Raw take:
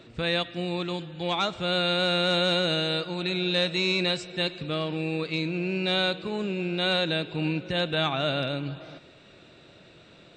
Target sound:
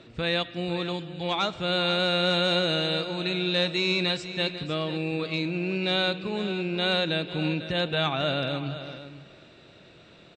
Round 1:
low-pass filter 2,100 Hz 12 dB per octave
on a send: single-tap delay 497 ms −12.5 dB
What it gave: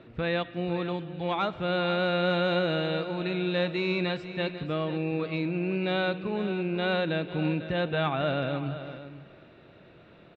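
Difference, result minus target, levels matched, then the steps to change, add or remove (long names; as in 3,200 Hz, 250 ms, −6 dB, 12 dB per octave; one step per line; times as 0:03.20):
8,000 Hz band −17.5 dB
change: low-pass filter 8,000 Hz 12 dB per octave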